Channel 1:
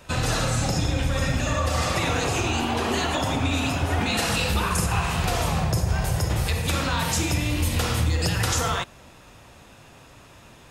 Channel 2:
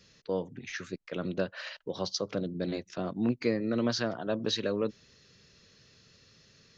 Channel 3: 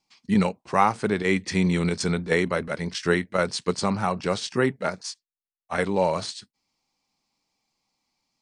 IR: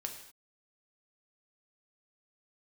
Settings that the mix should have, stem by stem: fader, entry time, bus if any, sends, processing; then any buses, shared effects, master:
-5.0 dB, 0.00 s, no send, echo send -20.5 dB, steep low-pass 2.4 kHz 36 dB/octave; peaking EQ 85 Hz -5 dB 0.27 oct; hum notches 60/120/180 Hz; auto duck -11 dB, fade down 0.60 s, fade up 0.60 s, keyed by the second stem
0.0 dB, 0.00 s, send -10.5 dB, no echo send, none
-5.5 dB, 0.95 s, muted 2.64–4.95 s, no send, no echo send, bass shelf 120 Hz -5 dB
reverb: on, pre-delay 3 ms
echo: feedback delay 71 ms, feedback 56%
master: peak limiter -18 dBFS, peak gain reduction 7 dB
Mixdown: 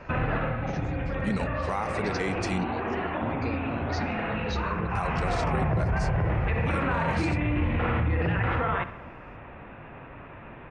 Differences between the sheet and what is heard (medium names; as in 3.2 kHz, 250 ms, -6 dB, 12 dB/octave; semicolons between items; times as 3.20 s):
stem 1 -5.0 dB -> +6.0 dB; stem 2 0.0 dB -> -10.0 dB